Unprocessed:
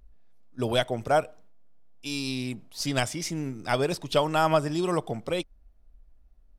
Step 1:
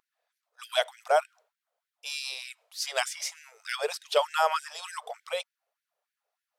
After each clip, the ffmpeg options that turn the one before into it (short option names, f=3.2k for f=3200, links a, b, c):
-af "afftfilt=real='re*gte(b*sr/1024,410*pow(1500/410,0.5+0.5*sin(2*PI*3.3*pts/sr)))':imag='im*gte(b*sr/1024,410*pow(1500/410,0.5+0.5*sin(2*PI*3.3*pts/sr)))':win_size=1024:overlap=0.75"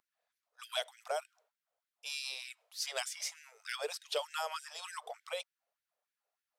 -filter_complex "[0:a]acrossover=split=360|3000[a][b][c];[b]acompressor=threshold=-34dB:ratio=3[d];[a][d][c]amix=inputs=3:normalize=0,volume=-5dB"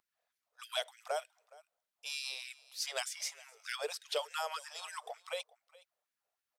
-af "aecho=1:1:417:0.0794"